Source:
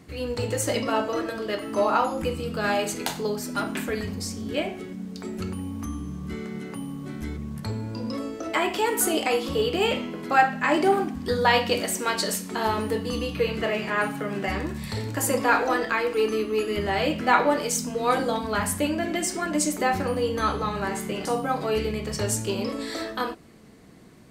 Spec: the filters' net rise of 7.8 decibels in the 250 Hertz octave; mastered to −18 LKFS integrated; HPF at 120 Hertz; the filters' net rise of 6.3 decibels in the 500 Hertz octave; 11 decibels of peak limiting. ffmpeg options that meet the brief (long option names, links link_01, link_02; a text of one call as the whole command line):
ffmpeg -i in.wav -af "highpass=120,equalizer=frequency=250:width_type=o:gain=8.5,equalizer=frequency=500:width_type=o:gain=5,volume=5.5dB,alimiter=limit=-8dB:level=0:latency=1" out.wav